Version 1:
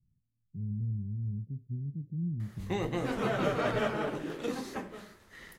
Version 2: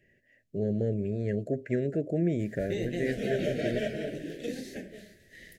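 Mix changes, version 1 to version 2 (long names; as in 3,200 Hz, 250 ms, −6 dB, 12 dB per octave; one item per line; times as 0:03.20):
speech: remove inverse Chebyshev low-pass filter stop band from 740 Hz, stop band 70 dB
master: add elliptic band-stop filter 650–1,700 Hz, stop band 60 dB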